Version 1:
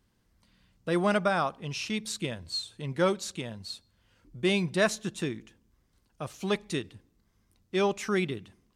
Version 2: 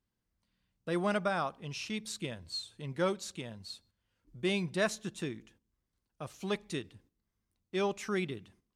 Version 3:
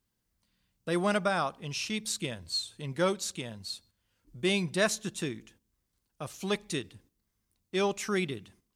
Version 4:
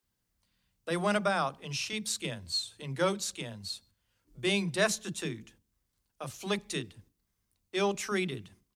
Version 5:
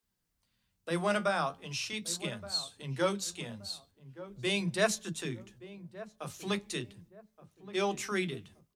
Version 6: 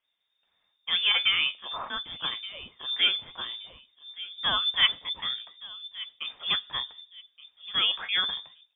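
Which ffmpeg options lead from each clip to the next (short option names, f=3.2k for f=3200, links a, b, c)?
-af "agate=range=-9dB:threshold=-58dB:ratio=16:detection=peak,volume=-5.5dB"
-af "highshelf=f=4.5k:g=7.5,volume=3dB"
-filter_complex "[0:a]acrossover=split=290[a][b];[a]adelay=30[c];[c][b]amix=inputs=2:normalize=0"
-filter_complex "[0:a]flanger=delay=4.2:depth=9.7:regen=58:speed=0.41:shape=triangular,asplit=2[a][b];[b]adelay=1173,lowpass=f=860:p=1,volume=-14dB,asplit=2[c][d];[d]adelay=1173,lowpass=f=860:p=1,volume=0.38,asplit=2[e][f];[f]adelay=1173,lowpass=f=860:p=1,volume=0.38,asplit=2[g][h];[h]adelay=1173,lowpass=f=860:p=1,volume=0.38[i];[a][c][e][g][i]amix=inputs=5:normalize=0,volume=2.5dB"
-af "lowpass=f=3.1k:t=q:w=0.5098,lowpass=f=3.1k:t=q:w=0.6013,lowpass=f=3.1k:t=q:w=0.9,lowpass=f=3.1k:t=q:w=2.563,afreqshift=-3700,volume=5.5dB"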